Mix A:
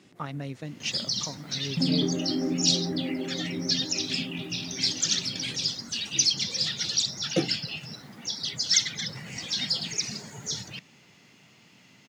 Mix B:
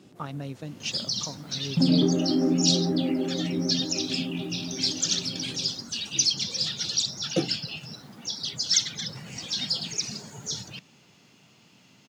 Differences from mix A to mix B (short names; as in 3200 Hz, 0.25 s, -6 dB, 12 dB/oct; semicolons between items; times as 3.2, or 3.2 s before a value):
first sound +5.0 dB; master: add bell 2000 Hz -7.5 dB 0.42 oct